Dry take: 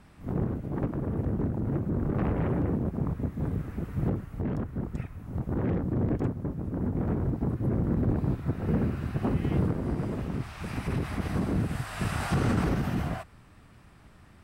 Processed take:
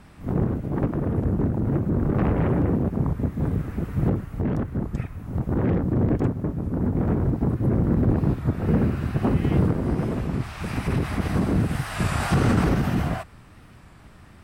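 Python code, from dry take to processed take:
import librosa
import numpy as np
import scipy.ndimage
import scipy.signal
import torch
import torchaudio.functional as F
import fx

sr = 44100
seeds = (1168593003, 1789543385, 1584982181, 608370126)

y = fx.record_warp(x, sr, rpm=33.33, depth_cents=100.0)
y = y * librosa.db_to_amplitude(6.0)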